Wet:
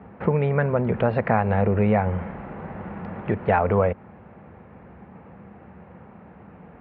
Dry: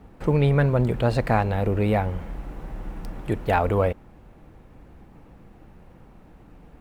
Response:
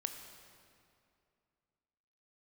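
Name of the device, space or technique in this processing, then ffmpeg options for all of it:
bass amplifier: -af "acompressor=threshold=-23dB:ratio=4,highpass=frequency=86:width=0.5412,highpass=frequency=86:width=1.3066,equalizer=frequency=130:width_type=q:width=4:gain=-8,equalizer=frequency=200:width_type=q:width=4:gain=3,equalizer=frequency=300:width_type=q:width=4:gain=-10,lowpass=frequency=2300:width=0.5412,lowpass=frequency=2300:width=1.3066,volume=7.5dB"

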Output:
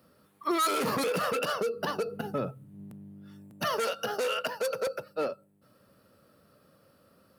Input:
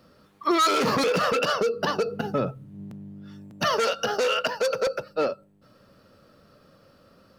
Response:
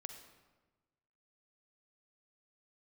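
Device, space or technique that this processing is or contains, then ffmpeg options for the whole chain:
budget condenser microphone: -af "highpass=67,highshelf=frequency=7800:width_type=q:width=1.5:gain=8.5,volume=-6dB"

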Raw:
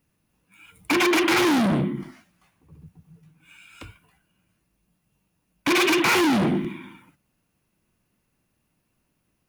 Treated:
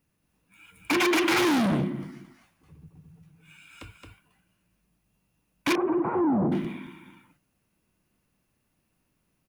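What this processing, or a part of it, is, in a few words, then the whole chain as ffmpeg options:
ducked delay: -filter_complex "[0:a]asplit=3[link_01][link_02][link_03];[link_02]adelay=221,volume=-3dB[link_04];[link_03]apad=whole_len=428035[link_05];[link_04][link_05]sidechaincompress=threshold=-45dB:ratio=3:attack=16:release=349[link_06];[link_01][link_06]amix=inputs=2:normalize=0,asettb=1/sr,asplit=3[link_07][link_08][link_09];[link_07]atrim=end=5.754[link_10];[link_08]atrim=start=5.75:end=6.52,asetpts=PTS-STARTPTS,afade=type=in:duration=0.004:curve=qsin,afade=type=out:start_time=0.766:duration=0.004:curve=qsin,lowpass=frequency=1000:width=0.5412,lowpass=frequency=1000:width=1.3066[link_11];[link_09]atrim=start=6.516[link_12];[link_10][link_11]acrossfade=duration=0.004:curve1=hsin:curve2=qsin[link_13];[link_13][link_12]acrossfade=duration=0.004:curve1=qsin:curve2=hsin,volume=-3dB"

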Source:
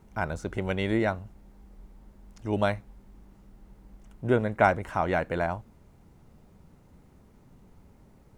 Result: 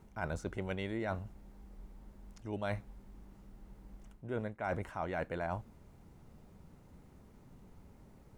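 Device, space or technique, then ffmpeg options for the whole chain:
compression on the reversed sound: -af "areverse,acompressor=threshold=-31dB:ratio=16,areverse,volume=-2dB"

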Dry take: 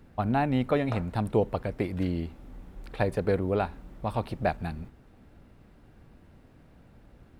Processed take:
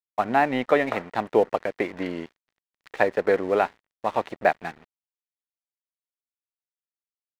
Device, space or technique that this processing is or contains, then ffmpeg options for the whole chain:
pocket radio on a weak battery: -af "highpass=380,lowpass=3200,aeval=exprs='sgn(val(0))*max(abs(val(0))-0.00335,0)':channel_layout=same,equalizer=frequency=1900:width_type=o:width=0.25:gain=7,volume=8dB"

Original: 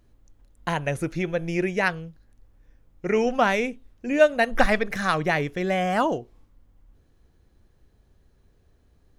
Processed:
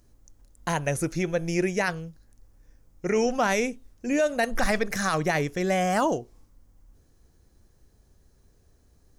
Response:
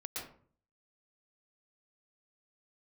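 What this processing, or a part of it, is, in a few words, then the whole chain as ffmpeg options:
over-bright horn tweeter: -af "highshelf=frequency=4400:width_type=q:width=1.5:gain=7.5,alimiter=limit=-14.5dB:level=0:latency=1:release=10"

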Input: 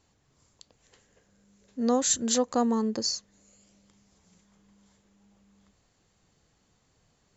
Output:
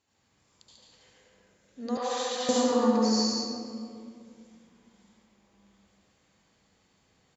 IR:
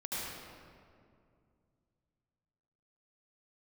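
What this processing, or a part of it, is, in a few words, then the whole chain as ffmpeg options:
PA in a hall: -filter_complex "[0:a]highpass=frequency=150:poles=1,equalizer=frequency=2600:width_type=o:width=1.6:gain=4.5,aecho=1:1:142:0.631[link_01];[1:a]atrim=start_sample=2205[link_02];[link_01][link_02]afir=irnorm=-1:irlink=0,asettb=1/sr,asplit=3[link_03][link_04][link_05];[link_03]atrim=end=1.974[link_06];[link_04]atrim=start=1.97:end=2.49,asetpts=PTS-STARTPTS,afade=type=in:duration=0.004:curve=qsin,afade=type=out:start_time=0.516:duration=0.004:curve=qsin,acrossover=split=510 4800:gain=0.0794 1 0.0631[link_07][link_08][link_09];[link_07][link_08][link_09]amix=inputs=3:normalize=0[link_10];[link_05]atrim=start=2.486[link_11];[link_06][link_10]acrossfade=duration=0.004:curve1=hsin:curve2=qsin[link_12];[link_12][link_11]acrossfade=duration=0.004:curve1=qsin:curve2=hsin,volume=-4dB"

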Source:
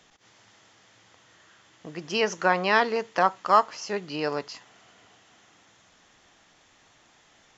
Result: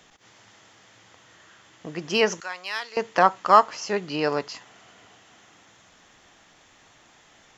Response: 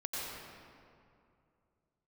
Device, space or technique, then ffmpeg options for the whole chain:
exciter from parts: -filter_complex "[0:a]asplit=2[link_01][link_02];[link_02]highpass=3400,asoftclip=type=tanh:threshold=-27dB,highpass=4900,volume=-10.5dB[link_03];[link_01][link_03]amix=inputs=2:normalize=0,asettb=1/sr,asplit=3[link_04][link_05][link_06];[link_04]atrim=end=2.404[link_07];[link_05]atrim=start=2.4:end=2.97,asetpts=PTS-STARTPTS,afade=type=in:duration=0.004:curve=qsin,afade=type=out:start_time=0.566:duration=0.004:curve=qsin,aderivative[link_08];[link_06]atrim=start=2.966[link_09];[link_07][link_08]acrossfade=duration=0.004:curve1=hsin:curve2=qsin[link_10];[link_10][link_09]acrossfade=duration=0.004:curve1=qsin:curve2=hsin,volume=4dB"

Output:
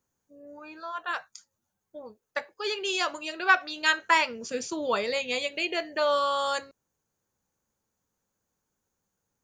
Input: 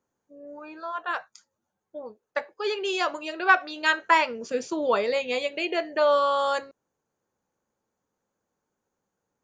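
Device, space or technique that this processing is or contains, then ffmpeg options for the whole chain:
smiley-face EQ: -af "lowshelf=frequency=140:gain=7,equalizer=frequency=470:width_type=o:width=2.9:gain=-5.5,highshelf=frequency=5400:gain=8.5"

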